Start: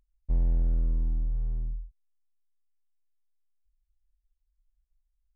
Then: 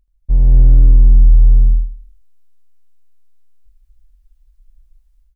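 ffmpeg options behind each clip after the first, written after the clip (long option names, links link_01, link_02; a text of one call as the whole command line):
ffmpeg -i in.wav -af "lowshelf=frequency=130:gain=9,dynaudnorm=framelen=290:gausssize=3:maxgain=13dB,aecho=1:1:79|158|237|316:0.376|0.135|0.0487|0.0175,volume=2dB" out.wav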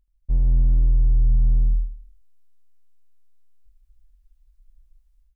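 ffmpeg -i in.wav -af "asoftclip=type=tanh:threshold=-6.5dB,volume=-6dB" out.wav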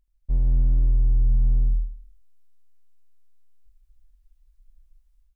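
ffmpeg -i in.wav -af "equalizer=frequency=74:width_type=o:width=1.9:gain=-3.5" out.wav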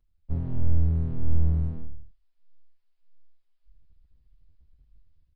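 ffmpeg -i in.wav -filter_complex "[0:a]acrossover=split=130[link_01][link_02];[link_01]aeval=exprs='abs(val(0))':channel_layout=same[link_03];[link_03][link_02]amix=inputs=2:normalize=0,aresample=11025,aresample=44100,asplit=2[link_04][link_05];[link_05]adelay=6.1,afreqshift=-1.6[link_06];[link_04][link_06]amix=inputs=2:normalize=1,volume=2.5dB" out.wav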